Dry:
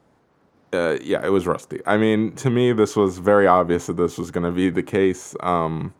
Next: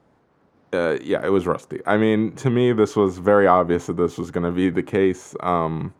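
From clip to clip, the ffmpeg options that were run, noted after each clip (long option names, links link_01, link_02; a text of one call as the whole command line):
ffmpeg -i in.wav -af "highshelf=frequency=5200:gain=-8" out.wav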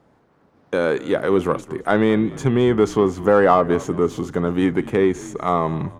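ffmpeg -i in.wav -filter_complex "[0:a]asplit=2[link_01][link_02];[link_02]asoftclip=type=tanh:threshold=-17dB,volume=-7dB[link_03];[link_01][link_03]amix=inputs=2:normalize=0,asplit=4[link_04][link_05][link_06][link_07];[link_05]adelay=216,afreqshift=-58,volume=-19dB[link_08];[link_06]adelay=432,afreqshift=-116,volume=-27dB[link_09];[link_07]adelay=648,afreqshift=-174,volume=-34.9dB[link_10];[link_04][link_08][link_09][link_10]amix=inputs=4:normalize=0,volume=-1dB" out.wav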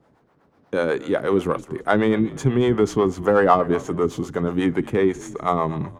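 ffmpeg -i in.wav -filter_complex "[0:a]acrossover=split=410[link_01][link_02];[link_01]aeval=exprs='val(0)*(1-0.7/2+0.7/2*cos(2*PI*8.1*n/s))':channel_layout=same[link_03];[link_02]aeval=exprs='val(0)*(1-0.7/2-0.7/2*cos(2*PI*8.1*n/s))':channel_layout=same[link_04];[link_03][link_04]amix=inputs=2:normalize=0,volume=1.5dB" out.wav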